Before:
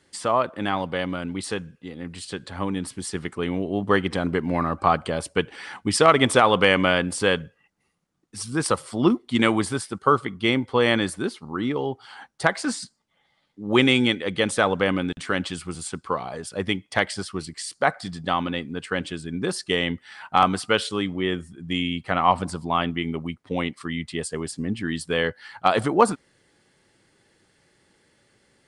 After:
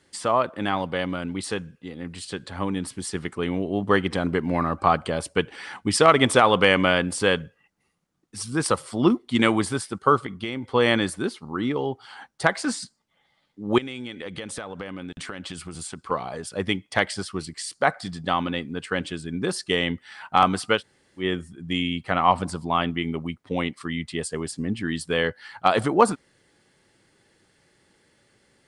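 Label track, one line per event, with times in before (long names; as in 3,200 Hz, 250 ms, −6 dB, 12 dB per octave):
10.190000	10.730000	downward compressor 12 to 1, threshold −25 dBFS
13.780000	16.110000	downward compressor 12 to 1, threshold −30 dBFS
20.780000	21.210000	fill with room tone, crossfade 0.10 s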